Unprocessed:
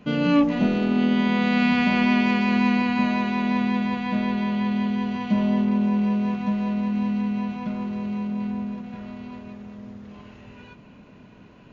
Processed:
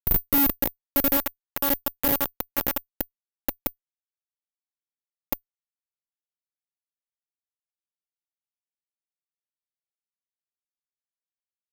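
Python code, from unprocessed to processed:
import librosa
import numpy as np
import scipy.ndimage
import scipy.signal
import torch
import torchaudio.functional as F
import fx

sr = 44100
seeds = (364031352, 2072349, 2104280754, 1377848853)

y = fx.lpc_monotone(x, sr, seeds[0], pitch_hz=280.0, order=16)
y = fx.mod_noise(y, sr, seeds[1], snr_db=34)
y = fx.schmitt(y, sr, flips_db=-22.0)
y = (np.kron(y[::3], np.eye(3)[0]) * 3)[:len(y)]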